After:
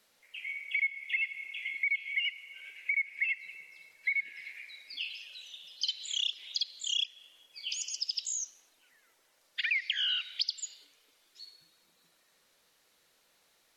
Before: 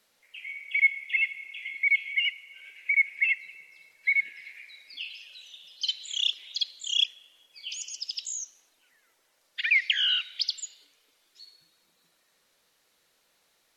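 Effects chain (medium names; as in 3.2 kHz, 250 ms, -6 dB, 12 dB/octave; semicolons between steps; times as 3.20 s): dynamic bell 4.8 kHz, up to +5 dB, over -51 dBFS, Q 5.8; compression 4:1, threshold -29 dBFS, peak gain reduction 11 dB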